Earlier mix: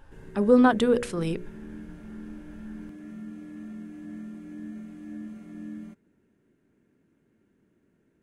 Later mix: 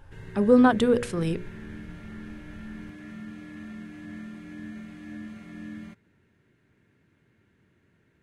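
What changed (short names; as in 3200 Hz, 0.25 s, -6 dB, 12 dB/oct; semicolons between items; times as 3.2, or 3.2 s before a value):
background: add graphic EQ 125/250/1000/2000/4000 Hz +4/-4/+4/+8/+9 dB; master: add bell 92 Hz +8 dB 1.1 oct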